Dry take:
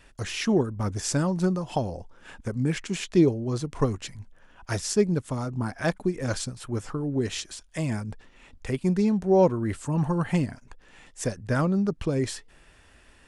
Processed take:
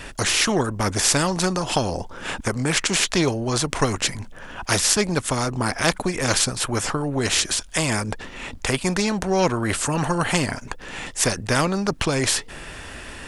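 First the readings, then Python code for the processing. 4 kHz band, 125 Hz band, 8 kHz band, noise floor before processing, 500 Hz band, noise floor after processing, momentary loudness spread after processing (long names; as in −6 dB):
+14.5 dB, +1.5 dB, +14.5 dB, −56 dBFS, +2.0 dB, −39 dBFS, 13 LU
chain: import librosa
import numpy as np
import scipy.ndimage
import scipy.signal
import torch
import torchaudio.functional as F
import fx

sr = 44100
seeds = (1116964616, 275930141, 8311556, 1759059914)

y = fx.spectral_comp(x, sr, ratio=2.0)
y = y * 10.0 ** (8.0 / 20.0)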